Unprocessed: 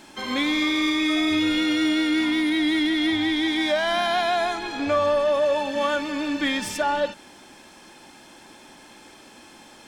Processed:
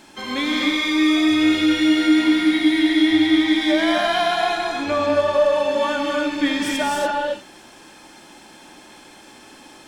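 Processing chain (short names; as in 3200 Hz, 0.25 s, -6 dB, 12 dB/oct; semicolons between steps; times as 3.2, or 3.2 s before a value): non-linear reverb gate 0.31 s rising, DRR 0 dB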